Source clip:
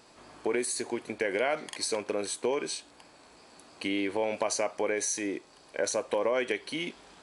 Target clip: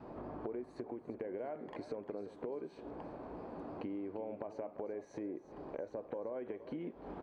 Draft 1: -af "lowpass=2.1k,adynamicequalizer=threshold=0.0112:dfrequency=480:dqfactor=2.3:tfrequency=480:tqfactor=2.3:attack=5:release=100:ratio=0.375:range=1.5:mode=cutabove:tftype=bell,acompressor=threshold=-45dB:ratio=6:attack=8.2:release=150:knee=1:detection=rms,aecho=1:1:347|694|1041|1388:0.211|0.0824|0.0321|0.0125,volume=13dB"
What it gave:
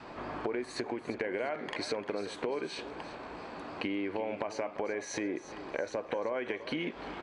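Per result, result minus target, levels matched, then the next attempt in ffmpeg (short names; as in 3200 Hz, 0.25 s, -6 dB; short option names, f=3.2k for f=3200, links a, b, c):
2000 Hz band +12.0 dB; compressor: peak gain reduction -6.5 dB
-af "lowpass=670,adynamicequalizer=threshold=0.0112:dfrequency=480:dqfactor=2.3:tfrequency=480:tqfactor=2.3:attack=5:release=100:ratio=0.375:range=1.5:mode=cutabove:tftype=bell,acompressor=threshold=-45dB:ratio=6:attack=8.2:release=150:knee=1:detection=rms,aecho=1:1:347|694|1041|1388:0.211|0.0824|0.0321|0.0125,volume=13dB"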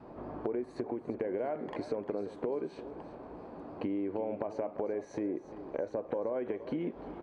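compressor: peak gain reduction -7.5 dB
-af "lowpass=670,adynamicequalizer=threshold=0.0112:dfrequency=480:dqfactor=2.3:tfrequency=480:tqfactor=2.3:attack=5:release=100:ratio=0.375:range=1.5:mode=cutabove:tftype=bell,acompressor=threshold=-54dB:ratio=6:attack=8.2:release=150:knee=1:detection=rms,aecho=1:1:347|694|1041|1388:0.211|0.0824|0.0321|0.0125,volume=13dB"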